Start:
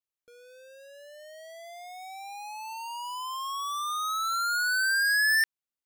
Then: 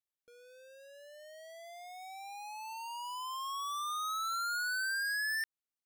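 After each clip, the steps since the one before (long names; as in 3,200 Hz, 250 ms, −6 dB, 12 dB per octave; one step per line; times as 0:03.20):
downward compressor, threshold −30 dBFS, peak gain reduction 6.5 dB
level −5 dB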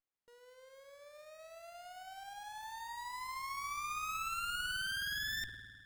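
spring reverb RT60 1.9 s, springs 50 ms, chirp 65 ms, DRR 8 dB
windowed peak hold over 9 samples
level −2.5 dB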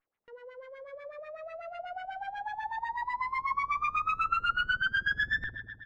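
auto-filter low-pass sine 8.1 Hz 470–2,400 Hz
single-tap delay 115 ms −21 dB
level +8 dB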